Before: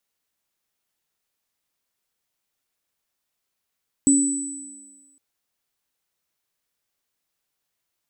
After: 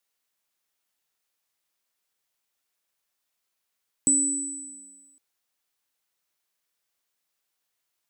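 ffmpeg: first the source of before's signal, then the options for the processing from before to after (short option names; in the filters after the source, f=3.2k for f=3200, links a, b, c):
-f lavfi -i "aevalsrc='0.224*pow(10,-3*t/1.27)*sin(2*PI*279*t)+0.158*pow(10,-3*t/1.6)*sin(2*PI*7960*t)':d=1.11:s=44100"
-filter_complex "[0:a]lowshelf=f=340:g=-8,acrossover=split=460|2600[a][b][c];[a]acompressor=threshold=-30dB:ratio=6[d];[d][b][c]amix=inputs=3:normalize=0"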